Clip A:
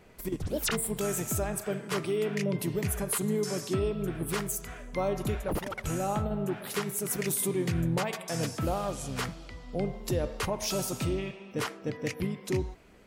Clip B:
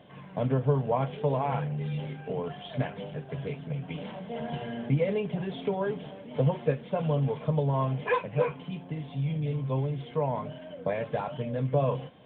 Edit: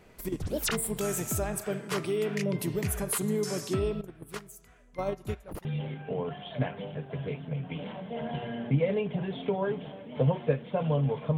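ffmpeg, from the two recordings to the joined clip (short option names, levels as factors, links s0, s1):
-filter_complex "[0:a]asettb=1/sr,asplit=3[s0][s1][s2];[s0]atrim=end=4.014[s3];[s1]atrim=start=4.01:end=5.65,asetpts=PTS-STARTPTS,afade=t=in:d=0.004:c=qsin,afade=t=out:st=1.636:d=0.004:c=qsin,agate=range=0.158:threshold=0.0355:ratio=16:release=100:detection=peak[s4];[s2]atrim=start=5.646[s5];[s3][s4]acrossfade=d=0.004:c1=hsin:c2=qsin[s6];[s6][s5]acrossfade=d=0.004:c1=qsin:c2=hsin,apad=whole_dur=11.37,atrim=end=11.37,atrim=end=5.652[s7];[1:a]atrim=start=1.838:end=7.56[s8];[s7][s8]acrossfade=d=0.004:c1=hsin:c2=hsin"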